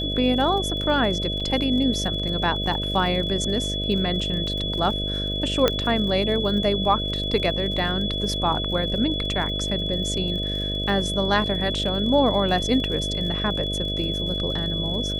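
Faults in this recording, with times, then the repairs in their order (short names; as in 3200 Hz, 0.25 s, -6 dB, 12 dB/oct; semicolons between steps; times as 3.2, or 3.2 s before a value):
buzz 50 Hz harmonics 13 -29 dBFS
crackle 50/s -32 dBFS
tone 3400 Hz -27 dBFS
1.4–1.41 gap 5.2 ms
5.68 pop -5 dBFS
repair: de-click; de-hum 50 Hz, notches 13; notch 3400 Hz, Q 30; interpolate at 1.4, 5.2 ms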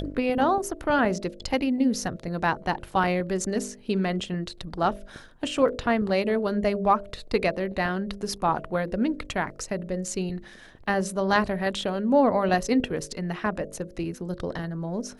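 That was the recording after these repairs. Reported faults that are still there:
5.68 pop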